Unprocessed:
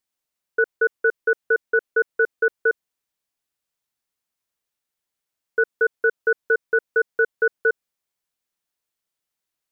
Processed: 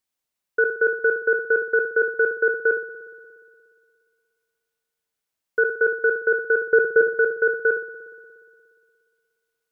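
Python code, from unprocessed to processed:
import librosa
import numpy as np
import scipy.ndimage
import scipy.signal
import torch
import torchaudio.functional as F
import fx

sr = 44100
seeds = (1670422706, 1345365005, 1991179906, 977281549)

y = fx.low_shelf(x, sr, hz=470.0, db=10.5, at=(6.61, 7.01))
y = fx.rev_spring(y, sr, rt60_s=2.2, pass_ms=(59,), chirp_ms=65, drr_db=11.5)
y = fx.sustainer(y, sr, db_per_s=120.0)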